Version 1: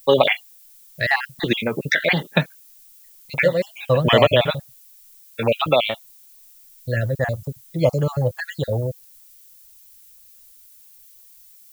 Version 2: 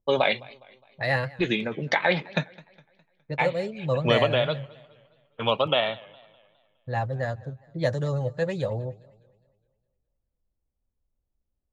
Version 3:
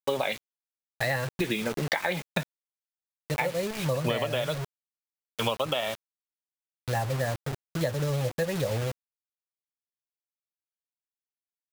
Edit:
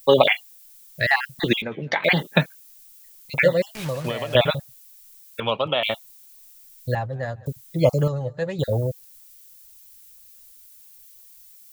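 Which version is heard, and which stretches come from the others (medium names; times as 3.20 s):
1
1.62–2.04 s: from 2
3.75–4.35 s: from 3
5.40–5.83 s: from 2
6.95–7.46 s: from 2
8.08–8.59 s: from 2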